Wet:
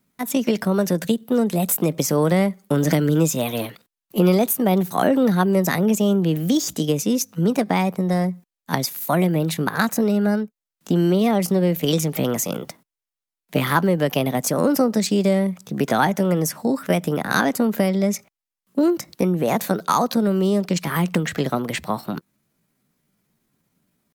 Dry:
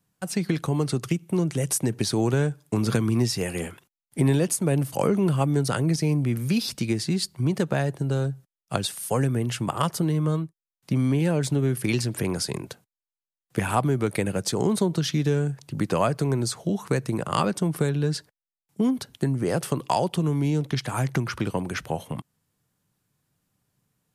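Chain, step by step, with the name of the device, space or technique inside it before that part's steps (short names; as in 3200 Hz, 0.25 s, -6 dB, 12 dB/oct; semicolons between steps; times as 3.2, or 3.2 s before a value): chipmunk voice (pitch shift +5 st); gain +4.5 dB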